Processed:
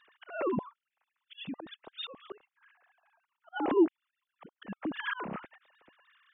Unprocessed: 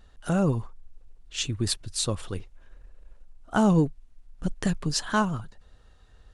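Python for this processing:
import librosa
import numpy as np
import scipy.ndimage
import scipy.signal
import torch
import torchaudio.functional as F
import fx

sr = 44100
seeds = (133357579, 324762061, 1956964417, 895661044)

y = fx.sine_speech(x, sr)
y = fx.auto_swell(y, sr, attack_ms=519.0)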